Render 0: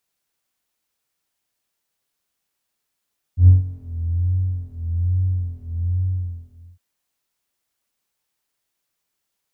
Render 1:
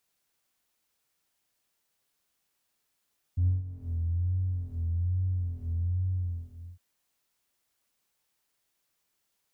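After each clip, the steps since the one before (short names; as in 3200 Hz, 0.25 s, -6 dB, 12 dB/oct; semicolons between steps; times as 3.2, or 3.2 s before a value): compressor 3:1, threshold -30 dBFS, peak gain reduction 16.5 dB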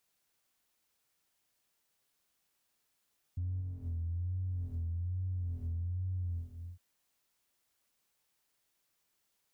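limiter -31.5 dBFS, peak gain reduction 11.5 dB; gain -1 dB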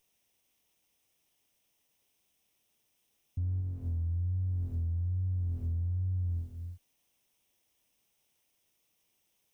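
minimum comb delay 0.34 ms; gain +4.5 dB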